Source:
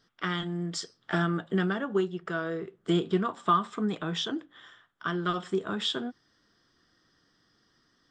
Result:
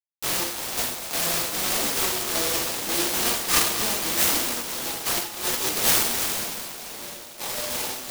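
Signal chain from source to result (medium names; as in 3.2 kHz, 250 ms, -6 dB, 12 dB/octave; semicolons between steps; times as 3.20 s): 0.74–1.51 s: comb filter that takes the minimum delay 1.3 ms; Schmitt trigger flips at -29.5 dBFS; on a send: two-band feedback delay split 670 Hz, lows 490 ms, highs 246 ms, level -13.5 dB; on the sum: two-slope reverb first 0.76 s, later 2.5 s, DRR -9 dB; ever faster or slower copies 250 ms, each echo -6 st, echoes 2, each echo -6 dB; tilt EQ +3.5 dB/octave; in parallel at -9 dB: saturation -23.5 dBFS, distortion -9 dB; on the sum: high-pass 360 Hz 12 dB/octave; 5.19–5.77 s: compressor with a negative ratio -26 dBFS, ratio -0.5; delay time shaken by noise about 3.9 kHz, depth 0.19 ms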